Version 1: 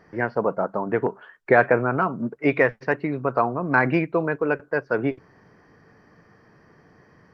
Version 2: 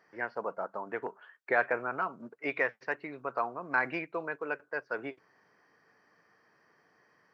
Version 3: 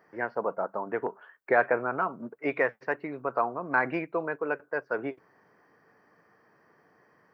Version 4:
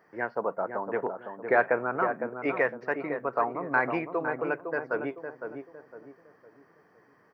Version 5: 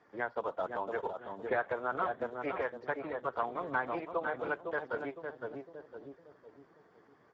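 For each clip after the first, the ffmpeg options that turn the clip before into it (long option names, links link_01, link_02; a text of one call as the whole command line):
ffmpeg -i in.wav -af "highpass=frequency=990:poles=1,volume=-6.5dB" out.wav
ffmpeg -i in.wav -af "equalizer=frequency=4600:width=0.43:gain=-11,volume=7dB" out.wav
ffmpeg -i in.wav -filter_complex "[0:a]asplit=2[link_01][link_02];[link_02]adelay=508,lowpass=frequency=1100:poles=1,volume=-6dB,asplit=2[link_03][link_04];[link_04]adelay=508,lowpass=frequency=1100:poles=1,volume=0.39,asplit=2[link_05][link_06];[link_06]adelay=508,lowpass=frequency=1100:poles=1,volume=0.39,asplit=2[link_07][link_08];[link_08]adelay=508,lowpass=frequency=1100:poles=1,volume=0.39,asplit=2[link_09][link_10];[link_10]adelay=508,lowpass=frequency=1100:poles=1,volume=0.39[link_11];[link_01][link_03][link_05][link_07][link_09][link_11]amix=inputs=6:normalize=0" out.wav
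ffmpeg -i in.wav -filter_complex "[0:a]acrossover=split=530|2400[link_01][link_02][link_03];[link_01]acompressor=threshold=-44dB:ratio=4[link_04];[link_02]acompressor=threshold=-29dB:ratio=4[link_05];[link_03]acompressor=threshold=-54dB:ratio=4[link_06];[link_04][link_05][link_06]amix=inputs=3:normalize=0" -ar 16000 -c:a libspeex -b:a 8k out.spx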